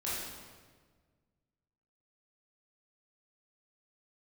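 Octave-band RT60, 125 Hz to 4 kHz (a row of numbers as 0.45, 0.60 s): 2.2, 1.9, 1.7, 1.4, 1.3, 1.2 s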